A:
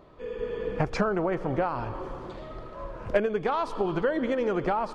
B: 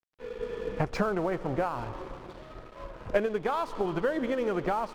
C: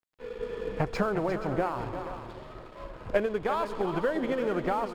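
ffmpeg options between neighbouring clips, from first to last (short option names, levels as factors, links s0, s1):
-af "aeval=exprs='sgn(val(0))*max(abs(val(0))-0.00562,0)':c=same,volume=0.841"
-filter_complex "[0:a]bandreject=f=5900:w=12,asplit=2[s0][s1];[s1]aecho=0:1:352|477:0.299|0.211[s2];[s0][s2]amix=inputs=2:normalize=0"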